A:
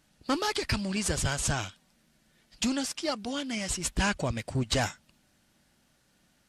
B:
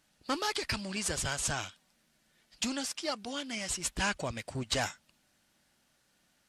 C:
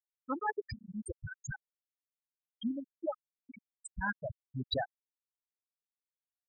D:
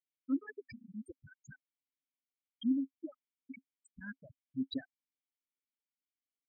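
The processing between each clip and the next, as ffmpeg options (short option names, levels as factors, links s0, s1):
-af "lowshelf=f=360:g=-7.5,volume=0.794"
-af "afftfilt=real='re*gte(hypot(re,im),0.126)':imag='im*gte(hypot(re,im),0.126)':win_size=1024:overlap=0.75,tremolo=f=1.9:d=0.43,volume=1.41"
-filter_complex "[0:a]asplit=3[s0][s1][s2];[s0]bandpass=f=270:t=q:w=8,volume=1[s3];[s1]bandpass=f=2290:t=q:w=8,volume=0.501[s4];[s2]bandpass=f=3010:t=q:w=8,volume=0.355[s5];[s3][s4][s5]amix=inputs=3:normalize=0,volume=2.51"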